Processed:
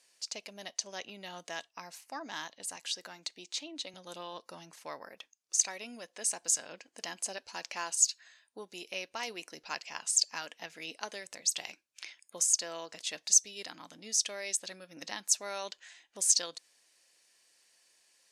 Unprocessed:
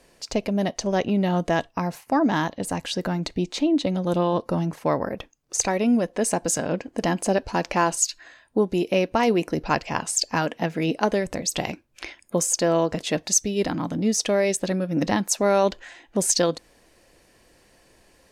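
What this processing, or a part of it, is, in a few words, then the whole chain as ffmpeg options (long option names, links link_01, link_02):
piezo pickup straight into a mixer: -filter_complex "[0:a]lowpass=7500,aderivative,asettb=1/sr,asplit=3[link_01][link_02][link_03];[link_01]atrim=end=2.764[link_04];[link_02]atrim=start=2.76:end=3.94,asetpts=PTS-STARTPTS,afade=type=in:duration=0.004:curve=qsin,afade=type=out:start_time=1.176:duration=0.004:curve=qsin,highpass=200[link_05];[link_03]atrim=start=3.936[link_06];[link_04][link_05]acrossfade=duration=0.004:curve1=hsin:curve2=qsin[link_07];[link_07][link_06]acrossfade=duration=0.004:curve1=qsin:curve2=hsin"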